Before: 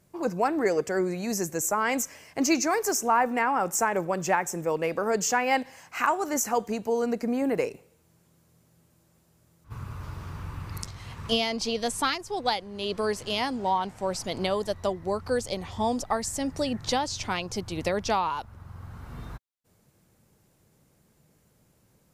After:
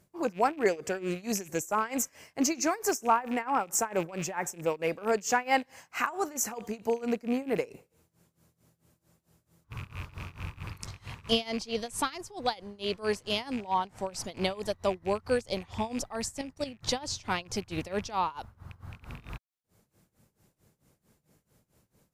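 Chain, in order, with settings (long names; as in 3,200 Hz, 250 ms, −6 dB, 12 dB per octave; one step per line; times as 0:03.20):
loose part that buzzes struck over −36 dBFS, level −30 dBFS
0:16.41–0:16.83: output level in coarse steps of 13 dB
amplitude tremolo 4.5 Hz, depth 90%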